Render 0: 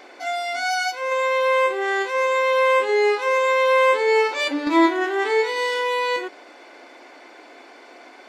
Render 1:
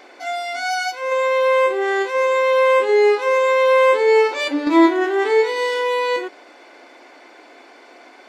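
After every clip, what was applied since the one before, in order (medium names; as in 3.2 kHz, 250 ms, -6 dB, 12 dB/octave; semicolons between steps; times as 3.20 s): dynamic bell 390 Hz, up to +5 dB, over -29 dBFS, Q 0.82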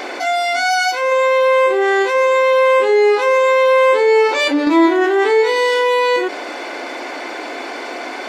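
level flattener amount 50%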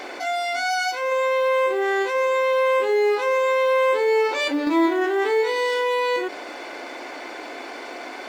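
companding laws mixed up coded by A; trim -7 dB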